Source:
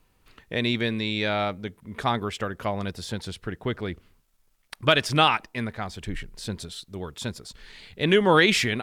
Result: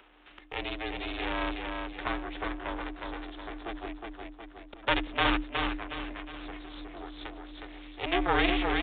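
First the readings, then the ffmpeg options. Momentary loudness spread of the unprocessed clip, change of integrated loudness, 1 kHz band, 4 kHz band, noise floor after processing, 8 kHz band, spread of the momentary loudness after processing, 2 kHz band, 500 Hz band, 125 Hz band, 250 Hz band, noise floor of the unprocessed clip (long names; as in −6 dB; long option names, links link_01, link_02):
18 LU, −7.5 dB, −5.5 dB, −8.0 dB, −54 dBFS, below −40 dB, 17 LU, −6.0 dB, −10.0 dB, −12.5 dB, −6.0 dB, −66 dBFS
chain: -filter_complex "[0:a]highpass=frequency=330:width=0.5412,highpass=frequency=330:width=1.3066,aeval=exprs='max(val(0),0)':channel_layout=same,aecho=1:1:364|728|1092|1456|1820:0.596|0.232|0.0906|0.0353|0.0138,afreqshift=130,aeval=exprs='val(0)*sin(2*PI*170*n/s)':channel_layout=same,aresample=8000,aresample=44100,asplit=2[link_01][link_02];[link_02]acompressor=mode=upward:threshold=-32dB:ratio=2.5,volume=0dB[link_03];[link_01][link_03]amix=inputs=2:normalize=0,volume=-7dB"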